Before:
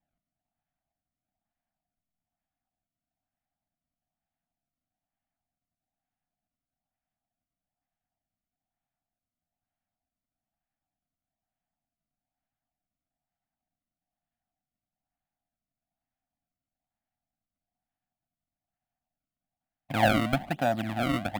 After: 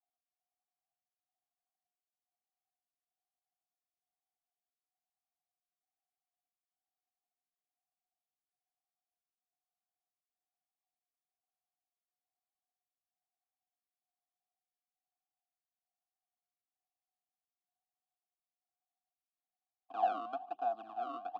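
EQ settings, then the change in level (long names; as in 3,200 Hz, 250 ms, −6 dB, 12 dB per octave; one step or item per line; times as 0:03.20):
formant filter a
band-pass filter 210–5,900 Hz
phaser with its sweep stopped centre 590 Hz, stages 6
+1.5 dB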